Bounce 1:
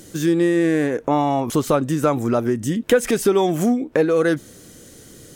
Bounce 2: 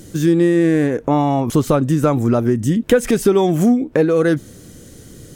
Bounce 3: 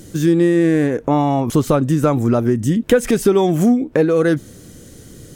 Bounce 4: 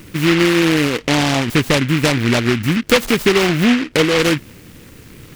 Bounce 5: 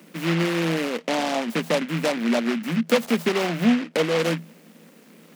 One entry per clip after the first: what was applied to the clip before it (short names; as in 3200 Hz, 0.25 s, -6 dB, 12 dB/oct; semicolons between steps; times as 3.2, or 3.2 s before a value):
low shelf 240 Hz +10 dB
nothing audible
noise-modulated delay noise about 2000 Hz, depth 0.22 ms
rippled Chebyshev high-pass 160 Hz, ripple 9 dB; gain -2 dB